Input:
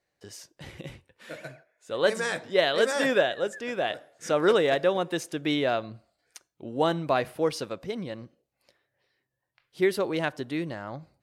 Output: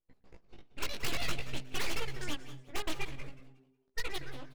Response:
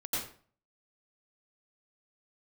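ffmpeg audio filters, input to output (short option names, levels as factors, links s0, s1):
-filter_complex "[0:a]highpass=460,acrossover=split=1400[s0][s1];[s0]aeval=exprs='abs(val(0))':c=same[s2];[s2][s1]amix=inputs=2:normalize=0,asetrate=108927,aresample=44100,adynamicsmooth=sensitivity=4.5:basefreq=1000,flanger=delay=15:depth=4.2:speed=0.53,aeval=exprs='0.0596*(abs(mod(val(0)/0.0596+3,4)-2)-1)':c=same,asplit=4[s3][s4][s5][s6];[s4]adelay=182,afreqshift=130,volume=0.106[s7];[s5]adelay=364,afreqshift=260,volume=0.0327[s8];[s6]adelay=546,afreqshift=390,volume=0.0102[s9];[s3][s7][s8][s9]amix=inputs=4:normalize=0,asplit=2[s10][s11];[1:a]atrim=start_sample=2205,asetrate=74970,aresample=44100,adelay=122[s12];[s11][s12]afir=irnorm=-1:irlink=0,volume=0.188[s13];[s10][s13]amix=inputs=2:normalize=0,adynamicequalizer=threshold=0.00282:dfrequency=4800:dqfactor=0.7:tfrequency=4800:tqfactor=0.7:attack=5:release=100:ratio=0.375:range=3:mode=cutabove:tftype=highshelf,volume=1.12"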